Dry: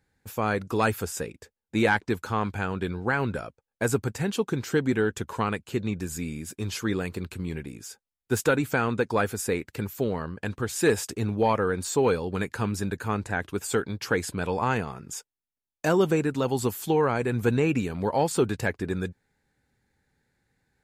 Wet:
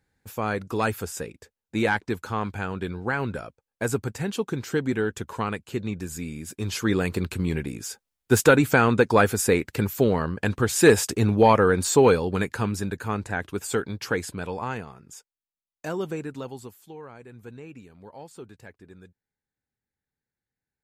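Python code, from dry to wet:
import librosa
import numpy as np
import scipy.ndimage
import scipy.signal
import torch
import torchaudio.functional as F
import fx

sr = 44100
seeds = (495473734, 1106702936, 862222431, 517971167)

y = fx.gain(x, sr, db=fx.line((6.34, -1.0), (7.14, 6.5), (11.95, 6.5), (12.9, 0.0), (14.05, 0.0), (14.99, -8.0), (16.38, -8.0), (16.82, -19.0)))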